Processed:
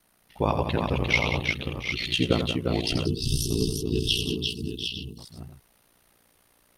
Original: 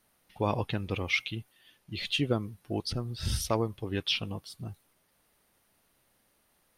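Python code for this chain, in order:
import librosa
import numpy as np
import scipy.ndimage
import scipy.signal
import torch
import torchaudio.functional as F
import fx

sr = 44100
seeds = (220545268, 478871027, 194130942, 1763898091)

y = fx.echo_multitap(x, sr, ms=(85, 182, 350, 707, 754, 860), db=(-8.0, -10.5, -4.5, -13.0, -7.0, -13.5))
y = y * np.sin(2.0 * np.pi * 30.0 * np.arange(len(y)) / sr)
y = fx.spec_box(y, sr, start_s=3.06, length_s=2.12, low_hz=460.0, high_hz=2600.0, gain_db=-28)
y = y * librosa.db_to_amplitude(7.0)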